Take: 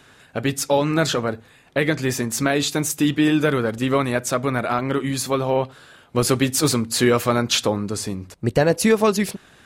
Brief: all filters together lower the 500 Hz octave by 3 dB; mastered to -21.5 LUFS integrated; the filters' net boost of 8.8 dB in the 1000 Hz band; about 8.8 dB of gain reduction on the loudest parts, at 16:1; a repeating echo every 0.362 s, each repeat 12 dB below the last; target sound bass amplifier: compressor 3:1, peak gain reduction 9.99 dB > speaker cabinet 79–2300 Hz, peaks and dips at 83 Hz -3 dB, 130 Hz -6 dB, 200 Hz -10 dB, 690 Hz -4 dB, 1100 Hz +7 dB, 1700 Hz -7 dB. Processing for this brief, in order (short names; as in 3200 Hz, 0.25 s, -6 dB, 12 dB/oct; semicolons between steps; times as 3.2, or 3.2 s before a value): bell 500 Hz -4.5 dB; bell 1000 Hz +8.5 dB; compressor 16:1, threshold -20 dBFS; feedback echo 0.362 s, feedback 25%, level -12 dB; compressor 3:1, threshold -32 dBFS; speaker cabinet 79–2300 Hz, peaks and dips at 83 Hz -3 dB, 130 Hz -6 dB, 200 Hz -10 dB, 690 Hz -4 dB, 1100 Hz +7 dB, 1700 Hz -7 dB; gain +14 dB